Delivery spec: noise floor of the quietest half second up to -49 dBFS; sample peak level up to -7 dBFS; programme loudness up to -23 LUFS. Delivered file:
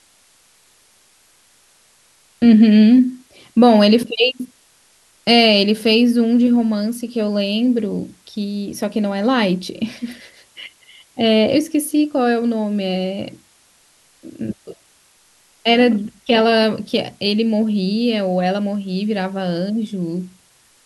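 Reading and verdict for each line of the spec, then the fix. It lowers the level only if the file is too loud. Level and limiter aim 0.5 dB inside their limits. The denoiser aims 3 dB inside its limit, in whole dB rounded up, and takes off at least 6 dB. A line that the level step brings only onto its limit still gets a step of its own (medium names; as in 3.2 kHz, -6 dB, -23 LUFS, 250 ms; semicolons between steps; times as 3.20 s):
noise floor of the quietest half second -55 dBFS: pass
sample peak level -2.0 dBFS: fail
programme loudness -16.5 LUFS: fail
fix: trim -7 dB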